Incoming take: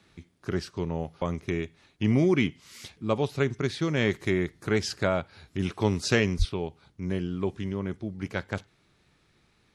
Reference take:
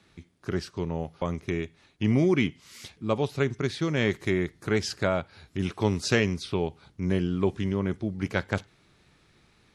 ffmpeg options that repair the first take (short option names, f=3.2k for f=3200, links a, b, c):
-filter_complex "[0:a]asplit=3[a][b][c];[a]afade=t=out:st=6.38:d=0.02[d];[b]highpass=f=140:w=0.5412,highpass=f=140:w=1.3066,afade=t=in:st=6.38:d=0.02,afade=t=out:st=6.5:d=0.02[e];[c]afade=t=in:st=6.5:d=0.02[f];[d][e][f]amix=inputs=3:normalize=0,asetnsamples=n=441:p=0,asendcmd='6.49 volume volume 4dB',volume=0dB"